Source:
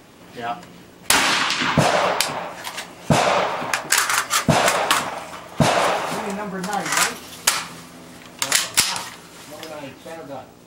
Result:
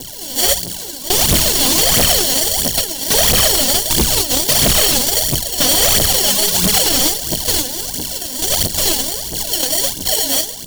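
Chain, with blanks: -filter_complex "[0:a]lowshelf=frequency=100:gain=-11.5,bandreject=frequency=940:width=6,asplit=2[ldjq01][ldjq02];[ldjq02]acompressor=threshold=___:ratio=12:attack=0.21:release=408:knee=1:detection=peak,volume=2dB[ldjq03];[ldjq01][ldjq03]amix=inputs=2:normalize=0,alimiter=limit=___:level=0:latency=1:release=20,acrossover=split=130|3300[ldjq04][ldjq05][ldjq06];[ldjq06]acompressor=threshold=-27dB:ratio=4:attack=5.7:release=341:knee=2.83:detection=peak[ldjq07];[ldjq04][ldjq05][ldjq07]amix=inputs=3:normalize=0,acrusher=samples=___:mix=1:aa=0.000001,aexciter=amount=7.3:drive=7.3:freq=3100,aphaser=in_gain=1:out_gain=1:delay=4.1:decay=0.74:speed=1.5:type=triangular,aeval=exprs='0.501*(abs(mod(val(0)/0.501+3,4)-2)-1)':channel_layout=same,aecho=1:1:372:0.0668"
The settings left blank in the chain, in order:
-26dB, -11.5dB, 35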